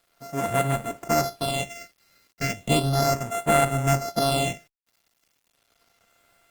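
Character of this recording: a buzz of ramps at a fixed pitch in blocks of 64 samples; phasing stages 6, 0.35 Hz, lowest notch 800–4900 Hz; a quantiser's noise floor 10-bit, dither none; Opus

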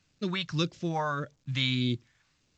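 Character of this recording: phasing stages 2, 1.7 Hz, lowest notch 340–1100 Hz; A-law

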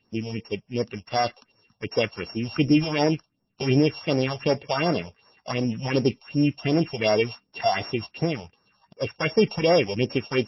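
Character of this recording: a buzz of ramps at a fixed pitch in blocks of 16 samples; phasing stages 4, 2.7 Hz, lowest notch 290–3200 Hz; MP3

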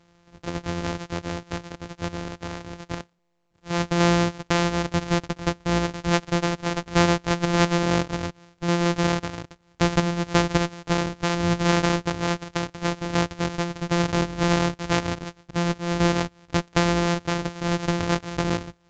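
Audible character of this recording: a buzz of ramps at a fixed pitch in blocks of 256 samples; random-step tremolo; A-law

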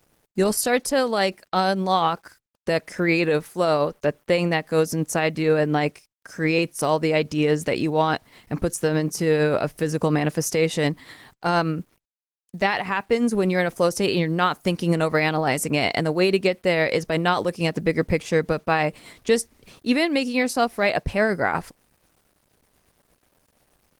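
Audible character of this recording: a quantiser's noise floor 10-bit, dither none; tremolo triangle 8.4 Hz, depth 40%; Opus

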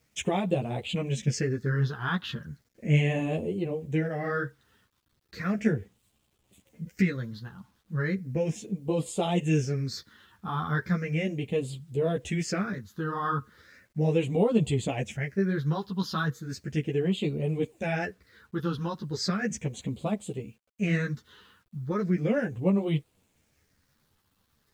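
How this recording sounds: phasing stages 6, 0.36 Hz, lowest notch 590–1600 Hz; a quantiser's noise floor 12-bit, dither none; a shimmering, thickened sound

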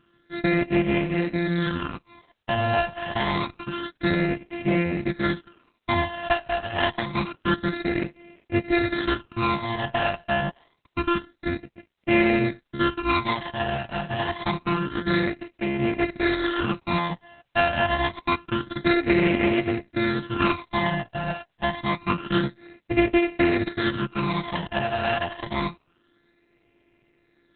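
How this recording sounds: a buzz of ramps at a fixed pitch in blocks of 128 samples; phasing stages 12, 0.27 Hz, lowest notch 370–1200 Hz; a quantiser's noise floor 12-bit, dither triangular; Opus

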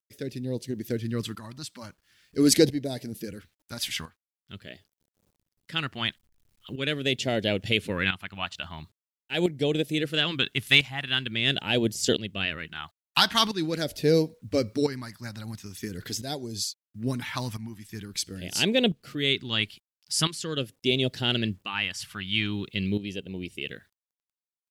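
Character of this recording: phasing stages 2, 0.44 Hz, lowest notch 450–1200 Hz; a quantiser's noise floor 12-bit, dither none; tremolo saw up 0.74 Hz, depth 70%

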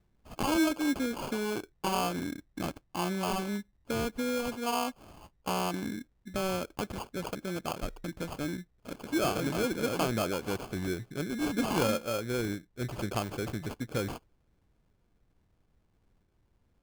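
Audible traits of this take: aliases and images of a low sample rate 1.9 kHz, jitter 0%

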